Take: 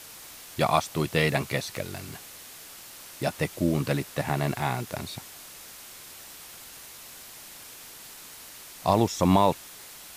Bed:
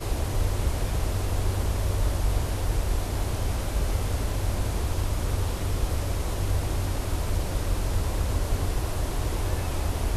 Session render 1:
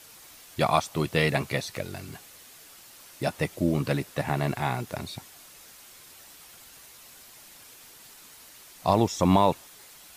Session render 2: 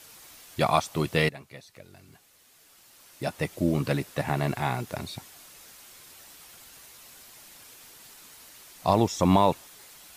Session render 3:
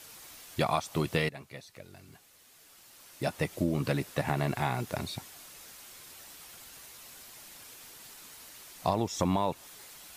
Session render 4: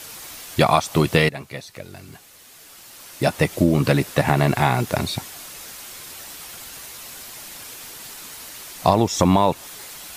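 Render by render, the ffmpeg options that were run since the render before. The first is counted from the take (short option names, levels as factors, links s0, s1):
-af "afftdn=nr=6:nf=-46"
-filter_complex "[0:a]asplit=2[s0][s1];[s0]atrim=end=1.29,asetpts=PTS-STARTPTS,afade=t=out:st=1.286:d=0.004:c=hsin:silence=0.133352[s2];[s1]atrim=start=1.29,asetpts=PTS-STARTPTS,afade=t=in:d=2.37:c=qua:silence=0.133352[s3];[s2][s3]concat=n=2:v=0:a=1"
-af "acompressor=threshold=0.0631:ratio=6"
-af "volume=3.98,alimiter=limit=0.891:level=0:latency=1"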